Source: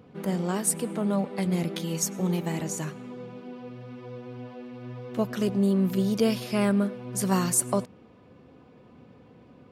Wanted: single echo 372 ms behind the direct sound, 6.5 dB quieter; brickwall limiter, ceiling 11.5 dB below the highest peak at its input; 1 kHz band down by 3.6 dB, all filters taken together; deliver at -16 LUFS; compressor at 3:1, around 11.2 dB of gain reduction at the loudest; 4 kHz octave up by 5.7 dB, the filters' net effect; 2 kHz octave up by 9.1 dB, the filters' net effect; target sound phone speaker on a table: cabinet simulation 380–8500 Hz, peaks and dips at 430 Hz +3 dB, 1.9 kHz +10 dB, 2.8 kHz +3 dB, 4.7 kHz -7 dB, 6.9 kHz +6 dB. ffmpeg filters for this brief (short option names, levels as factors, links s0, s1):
-af "equalizer=f=1000:t=o:g=-6.5,equalizer=f=2000:t=o:g=4,equalizer=f=4000:t=o:g=6.5,acompressor=threshold=0.0178:ratio=3,alimiter=level_in=2.11:limit=0.0631:level=0:latency=1,volume=0.473,highpass=f=380:w=0.5412,highpass=f=380:w=1.3066,equalizer=f=430:t=q:w=4:g=3,equalizer=f=1900:t=q:w=4:g=10,equalizer=f=2800:t=q:w=4:g=3,equalizer=f=4700:t=q:w=4:g=-7,equalizer=f=6900:t=q:w=4:g=6,lowpass=f=8500:w=0.5412,lowpass=f=8500:w=1.3066,aecho=1:1:372:0.473,volume=18.8"